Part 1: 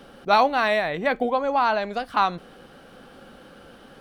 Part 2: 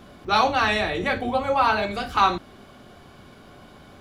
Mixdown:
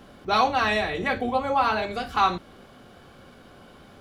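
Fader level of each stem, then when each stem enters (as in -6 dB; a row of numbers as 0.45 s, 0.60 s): -7.5 dB, -3.5 dB; 0.00 s, 0.00 s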